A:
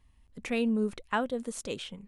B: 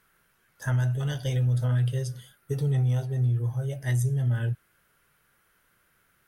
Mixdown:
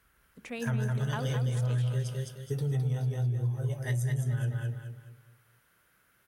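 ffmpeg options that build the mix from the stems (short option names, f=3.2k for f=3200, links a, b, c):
-filter_complex "[0:a]volume=-7dB,asplit=2[a][b];[b]volume=-7dB[c];[1:a]volume=-2.5dB,asplit=2[d][e];[e]volume=-3.5dB[f];[c][f]amix=inputs=2:normalize=0,aecho=0:1:211|422|633|844|1055:1|0.37|0.137|0.0507|0.0187[g];[a][d][g]amix=inputs=3:normalize=0,highpass=41,bandreject=f=75.77:t=h:w=4,bandreject=f=151.54:t=h:w=4,bandreject=f=227.31:t=h:w=4,bandreject=f=303.08:t=h:w=4,bandreject=f=378.85:t=h:w=4,bandreject=f=454.62:t=h:w=4,acompressor=threshold=-26dB:ratio=6"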